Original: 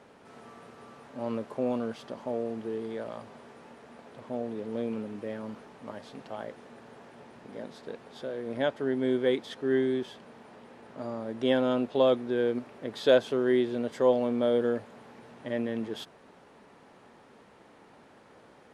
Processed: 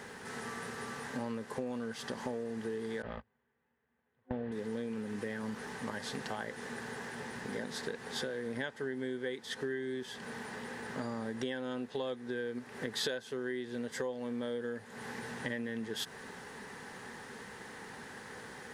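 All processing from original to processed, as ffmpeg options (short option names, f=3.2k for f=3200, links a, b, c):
-filter_complex "[0:a]asettb=1/sr,asplit=3[a][b][c];[a]atrim=end=3.024[d];[b]atrim=start=3.02:end=4.52,asetpts=PTS-STARTPTS,afade=t=in:d=0.004:c=qsin,afade=t=out:st=1.496:d=0.004:c=qsin,lowpass=f=3.3k:w=0.5412,lowpass=f=3.3k:w=1.3066,agate=range=-38dB:threshold=-40dB:ratio=16:release=100:detection=peak,equalizer=f=64:w=0.93:g=11.5[e];[c]atrim=start=4.516[f];[d][e]acrossfade=d=0.004:c1=hsin:c2=qsin[g];[g][f]acrossfade=d=0.004:c1=qsin:c2=hsin,superequalizer=6b=0.562:8b=0.447:11b=2.51,acompressor=threshold=-42dB:ratio=10,bass=f=250:g=1,treble=f=4k:g=10,volume=7dB"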